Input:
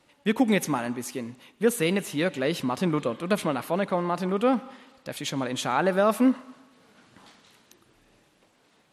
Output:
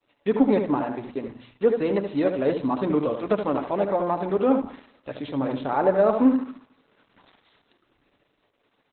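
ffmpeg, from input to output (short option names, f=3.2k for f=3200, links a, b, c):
-filter_complex "[0:a]asplit=3[a][b][c];[a]afade=t=out:st=3.48:d=0.02[d];[b]adynamicequalizer=threshold=0.00112:dfrequency=9600:dqfactor=0.86:tfrequency=9600:tqfactor=0.86:attack=5:release=100:ratio=0.375:range=1.5:mode=cutabove:tftype=bell,afade=t=in:st=3.48:d=0.02,afade=t=out:st=4.36:d=0.02[e];[c]afade=t=in:st=4.36:d=0.02[f];[d][e][f]amix=inputs=3:normalize=0,acrossover=split=780|1100[g][h][i];[i]acompressor=threshold=-47dB:ratio=4[j];[g][h][j]amix=inputs=3:normalize=0,equalizer=f=160:w=4.7:g=-14,aecho=1:1:7:0.33,aeval=exprs='val(0)+0.00562*sin(2*PI*9100*n/s)':c=same,agate=range=-33dB:threshold=-42dB:ratio=3:detection=peak,bandreject=f=60:t=h:w=6,bandreject=f=120:t=h:w=6,bandreject=f=180:t=h:w=6,bandreject=f=240:t=h:w=6,asplit=2[k][l];[l]adelay=75,lowpass=f=2.2k:p=1,volume=-6dB,asplit=2[m][n];[n]adelay=75,lowpass=f=2.2k:p=1,volume=0.29,asplit=2[o][p];[p]adelay=75,lowpass=f=2.2k:p=1,volume=0.29,asplit=2[q][r];[r]adelay=75,lowpass=f=2.2k:p=1,volume=0.29[s];[k][m][o][q][s]amix=inputs=5:normalize=0,acontrast=68,volume=-3dB" -ar 48000 -c:a libopus -b:a 8k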